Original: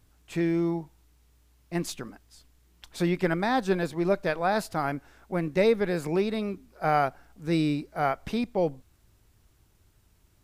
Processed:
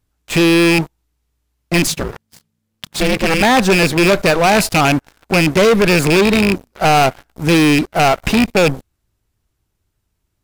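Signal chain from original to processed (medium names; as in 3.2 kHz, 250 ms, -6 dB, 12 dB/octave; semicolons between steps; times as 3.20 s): rattle on loud lows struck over -32 dBFS, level -17 dBFS; waveshaping leveller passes 5; 1.87–3.41 s: ring modulator 160 Hz; trim +3 dB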